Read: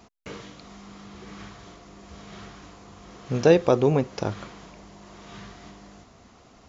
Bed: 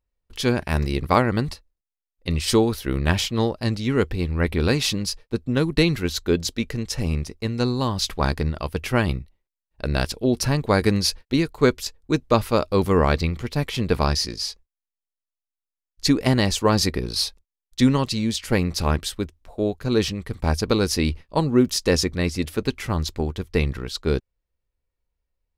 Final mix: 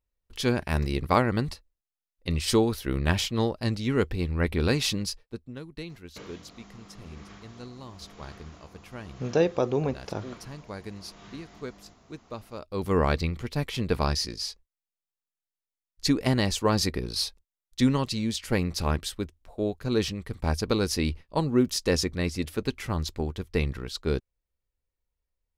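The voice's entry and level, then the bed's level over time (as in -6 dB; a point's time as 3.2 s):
5.90 s, -6.0 dB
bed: 5.04 s -4 dB
5.63 s -20.5 dB
12.54 s -20.5 dB
12.94 s -5 dB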